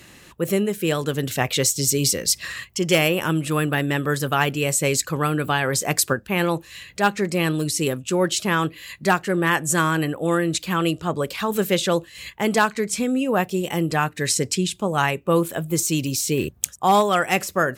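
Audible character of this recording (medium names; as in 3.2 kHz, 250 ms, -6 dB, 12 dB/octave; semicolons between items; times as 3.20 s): noise floor -48 dBFS; spectral tilt -4.0 dB/octave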